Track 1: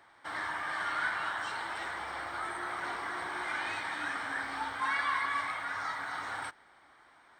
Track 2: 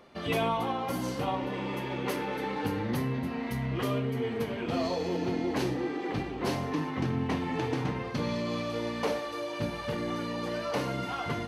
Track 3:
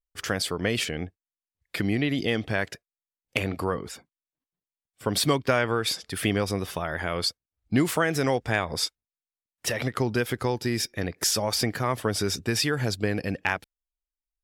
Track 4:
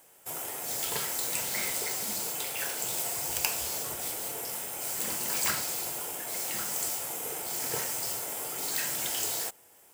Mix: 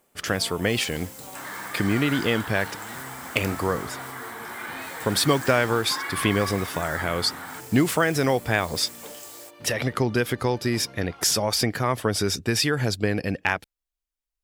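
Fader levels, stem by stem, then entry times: −0.5, −13.5, +2.5, −11.0 decibels; 1.10, 0.00, 0.00, 0.00 seconds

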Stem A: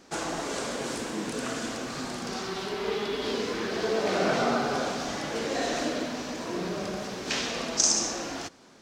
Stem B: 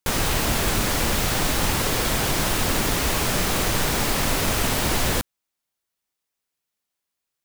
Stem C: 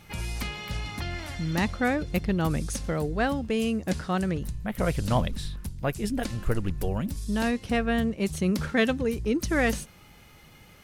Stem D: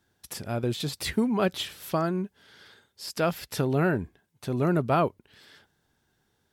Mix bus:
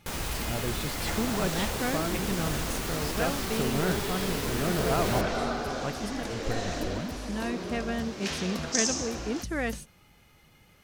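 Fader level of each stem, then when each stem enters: −4.5, −11.5, −6.5, −6.0 decibels; 0.95, 0.00, 0.00, 0.00 seconds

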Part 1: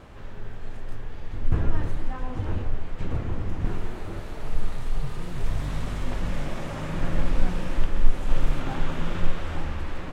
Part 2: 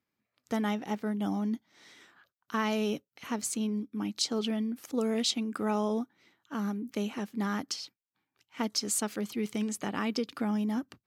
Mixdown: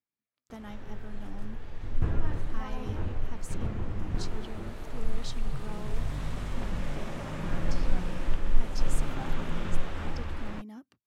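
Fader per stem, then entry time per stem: −4.5, −14.0 decibels; 0.50, 0.00 seconds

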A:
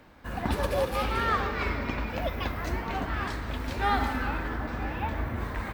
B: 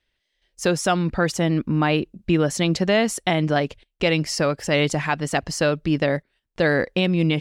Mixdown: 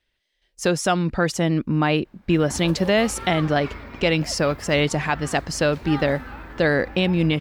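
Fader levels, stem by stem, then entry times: −7.0, 0.0 decibels; 2.05, 0.00 seconds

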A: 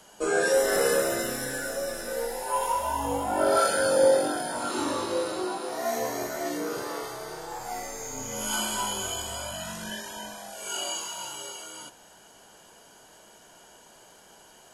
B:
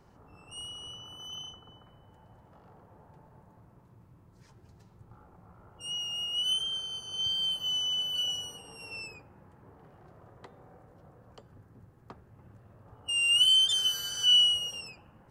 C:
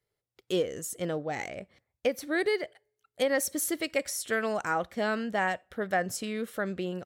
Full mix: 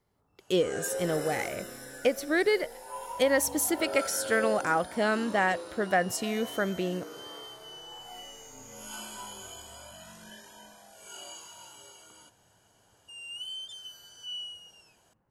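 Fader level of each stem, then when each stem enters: −12.5, −17.0, +2.5 decibels; 0.40, 0.00, 0.00 seconds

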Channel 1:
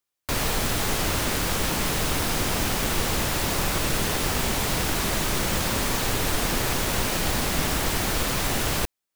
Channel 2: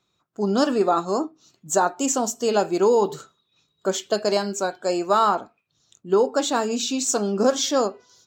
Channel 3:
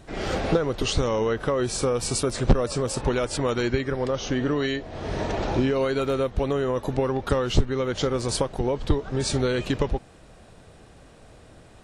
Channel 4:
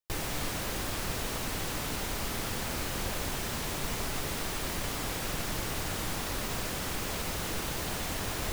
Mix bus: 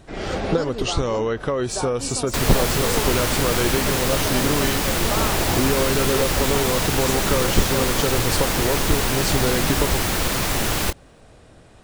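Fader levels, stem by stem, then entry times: +2.5, −10.5, +1.0, +3.0 decibels; 2.05, 0.00, 0.00, 2.40 seconds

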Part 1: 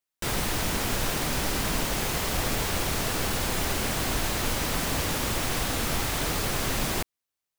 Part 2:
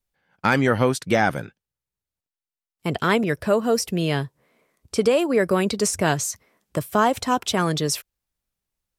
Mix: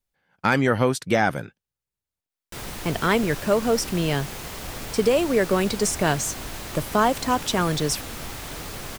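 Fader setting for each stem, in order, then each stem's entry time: −7.0, −1.0 decibels; 2.30, 0.00 seconds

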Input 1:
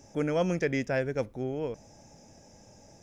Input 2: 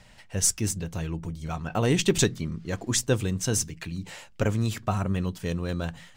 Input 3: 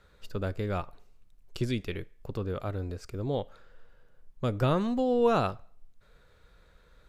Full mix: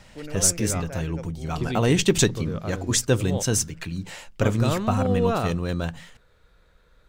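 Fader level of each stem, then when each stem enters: −9.0, +3.0, +0.5 decibels; 0.00, 0.00, 0.00 seconds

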